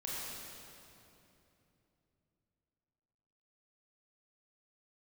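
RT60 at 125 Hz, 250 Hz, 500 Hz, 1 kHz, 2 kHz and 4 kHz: 4.4 s, 3.9 s, 3.2 s, 2.7 s, 2.5 s, 2.3 s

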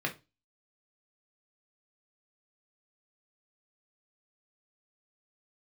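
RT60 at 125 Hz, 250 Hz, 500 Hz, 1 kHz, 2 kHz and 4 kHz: 0.35 s, 0.30 s, 0.25 s, 0.25 s, 0.25 s, 0.25 s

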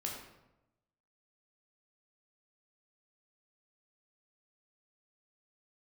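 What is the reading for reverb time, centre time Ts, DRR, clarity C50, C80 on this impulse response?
0.95 s, 46 ms, -1.5 dB, 3.5 dB, 5.5 dB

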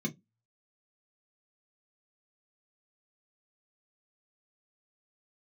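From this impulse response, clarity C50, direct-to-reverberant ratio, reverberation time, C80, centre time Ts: 23.0 dB, 0.0 dB, 0.15 s, 33.5 dB, 19 ms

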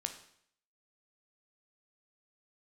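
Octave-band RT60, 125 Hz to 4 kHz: 0.65 s, 0.65 s, 0.65 s, 0.65 s, 0.65 s, 0.65 s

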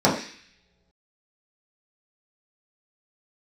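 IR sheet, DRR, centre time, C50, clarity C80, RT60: -7.0 dB, 30 ms, 7.0 dB, 10.0 dB, no single decay rate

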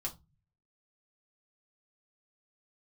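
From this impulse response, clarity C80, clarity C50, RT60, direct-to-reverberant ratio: 24.5 dB, 16.5 dB, 0.20 s, -2.0 dB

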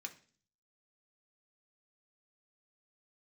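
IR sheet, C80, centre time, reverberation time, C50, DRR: 19.5 dB, 7 ms, 0.45 s, 14.5 dB, 3.0 dB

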